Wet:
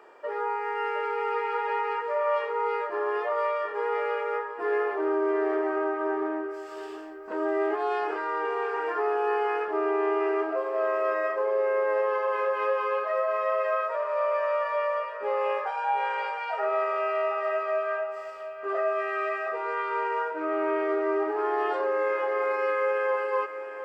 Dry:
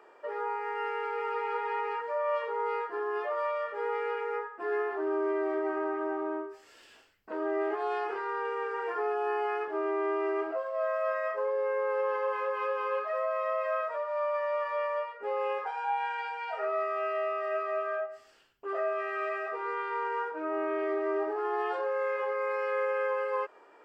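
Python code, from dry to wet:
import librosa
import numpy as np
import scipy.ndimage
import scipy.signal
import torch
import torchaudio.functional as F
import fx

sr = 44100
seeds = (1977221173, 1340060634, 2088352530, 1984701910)

y = fx.echo_feedback(x, sr, ms=716, feedback_pct=47, wet_db=-11.5)
y = y * librosa.db_to_amplitude(4.0)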